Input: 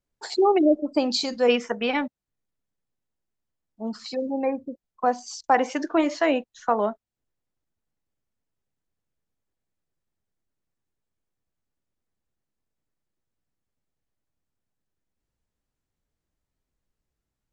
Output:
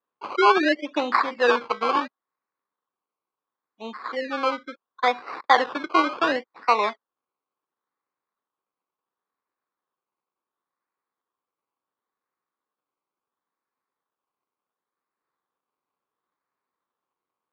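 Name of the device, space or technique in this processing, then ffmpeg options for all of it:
circuit-bent sampling toy: -af "acrusher=samples=19:mix=1:aa=0.000001:lfo=1:lforange=11.4:lforate=0.71,highpass=440,equalizer=f=640:t=q:w=4:g=-7,equalizer=f=1.1k:t=q:w=4:g=9,equalizer=f=2.9k:t=q:w=4:g=-5,lowpass=f=4k:w=0.5412,lowpass=f=4k:w=1.3066,volume=3dB"

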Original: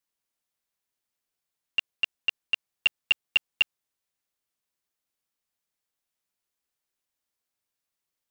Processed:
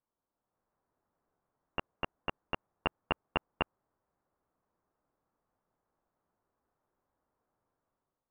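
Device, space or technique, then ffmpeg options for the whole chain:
action camera in a waterproof case: -af "lowpass=f=1.2k:w=0.5412,lowpass=f=1.2k:w=1.3066,dynaudnorm=f=150:g=7:m=9dB,volume=5dB" -ar 44100 -c:a aac -b:a 96k

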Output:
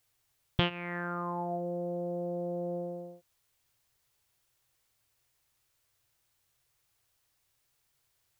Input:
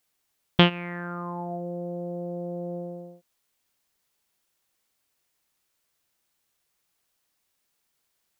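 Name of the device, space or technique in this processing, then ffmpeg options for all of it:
car stereo with a boomy subwoofer: -af "lowshelf=f=150:t=q:w=3:g=6.5,alimiter=limit=-14.5dB:level=0:latency=1:release=369"

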